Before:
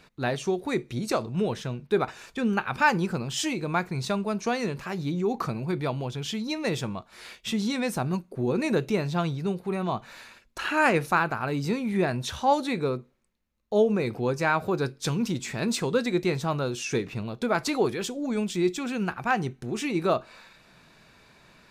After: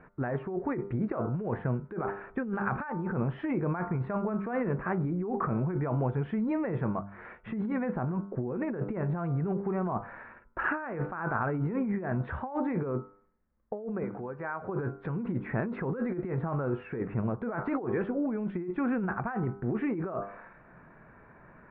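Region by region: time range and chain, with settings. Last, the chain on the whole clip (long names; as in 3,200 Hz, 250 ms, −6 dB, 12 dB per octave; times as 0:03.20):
0:14.03–0:14.69: downward compressor 8 to 1, threshold −32 dBFS + low-shelf EQ 370 Hz −9.5 dB + notch filter 2,600 Hz, Q 22
whole clip: Butterworth low-pass 1,800 Hz 36 dB per octave; hum removal 99.46 Hz, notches 15; compressor whose output falls as the input rises −31 dBFS, ratio −1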